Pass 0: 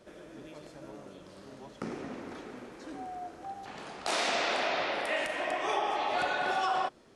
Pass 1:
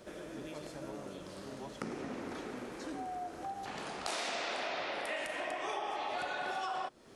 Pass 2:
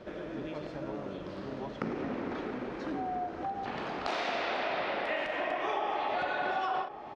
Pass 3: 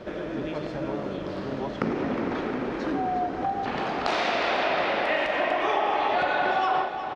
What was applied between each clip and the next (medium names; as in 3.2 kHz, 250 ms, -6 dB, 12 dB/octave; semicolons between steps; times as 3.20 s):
treble shelf 9 kHz +7 dB; compression 3:1, threshold -42 dBFS, peak gain reduction 12 dB; trim +3.5 dB
distance through air 240 m; echo from a far wall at 180 m, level -11 dB; endings held to a fixed fall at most 130 dB/s; trim +6.5 dB
feedback delay 361 ms, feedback 54%, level -11 dB; trim +7.5 dB